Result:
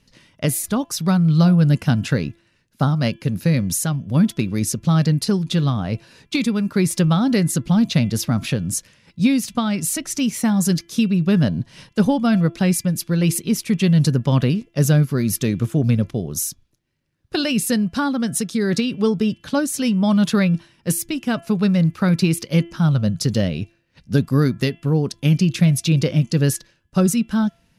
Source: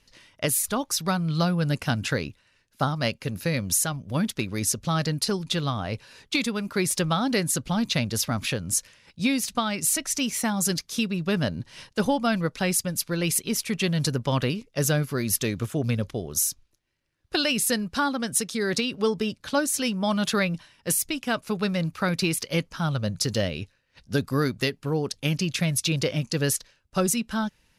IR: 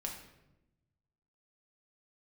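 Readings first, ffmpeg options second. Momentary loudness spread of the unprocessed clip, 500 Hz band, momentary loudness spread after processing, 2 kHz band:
5 LU, +3.5 dB, 7 LU, 0.0 dB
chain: -af "equalizer=f=170:t=o:w=2:g=11,bandreject=f=338.6:t=h:w=4,bandreject=f=677.2:t=h:w=4,bandreject=f=1.0158k:t=h:w=4,bandreject=f=1.3544k:t=h:w=4,bandreject=f=1.693k:t=h:w=4,bandreject=f=2.0316k:t=h:w=4,bandreject=f=2.3702k:t=h:w=4,bandreject=f=2.7088k:t=h:w=4,bandreject=f=3.0474k:t=h:w=4,bandreject=f=3.386k:t=h:w=4"

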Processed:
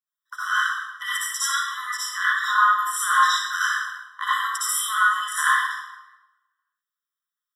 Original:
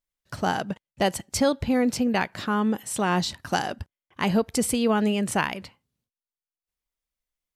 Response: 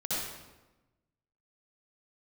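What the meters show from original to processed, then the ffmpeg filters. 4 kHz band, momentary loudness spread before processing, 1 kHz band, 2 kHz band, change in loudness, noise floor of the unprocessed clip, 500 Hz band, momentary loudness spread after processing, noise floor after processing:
+5.0 dB, 9 LU, +7.0 dB, +11.0 dB, +3.5 dB, under -85 dBFS, under -40 dB, 11 LU, under -85 dBFS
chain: -filter_complex "[0:a]agate=range=-7dB:threshold=-48dB:ratio=16:detection=peak,highshelf=f=10k:g=5,acrossover=split=1600[a][b];[a]aeval=exprs='0.282*sin(PI/2*1.58*val(0)/0.282)':c=same[c];[c][b]amix=inputs=2:normalize=0[d];[1:a]atrim=start_sample=2205[e];[d][e]afir=irnorm=-1:irlink=0,afftfilt=real='re*eq(mod(floor(b*sr/1024/1000),2),1)':imag='im*eq(mod(floor(b*sr/1024/1000),2),1)':win_size=1024:overlap=0.75,volume=1.5dB"

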